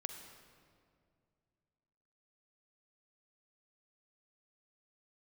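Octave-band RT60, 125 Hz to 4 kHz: 3.0, 2.7, 2.5, 2.1, 1.7, 1.4 seconds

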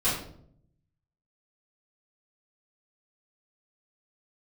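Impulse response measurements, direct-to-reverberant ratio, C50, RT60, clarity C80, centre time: −13.5 dB, 3.5 dB, 0.65 s, 7.5 dB, 45 ms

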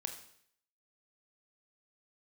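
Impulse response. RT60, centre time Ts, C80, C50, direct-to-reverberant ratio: 0.65 s, 17 ms, 11.5 dB, 9.0 dB, 5.0 dB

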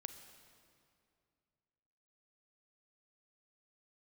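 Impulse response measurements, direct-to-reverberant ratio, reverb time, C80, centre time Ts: 8.5 dB, 2.4 s, 10.0 dB, 24 ms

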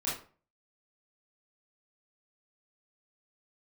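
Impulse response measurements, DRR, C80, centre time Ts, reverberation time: −9.0 dB, 10.5 dB, 42 ms, 0.40 s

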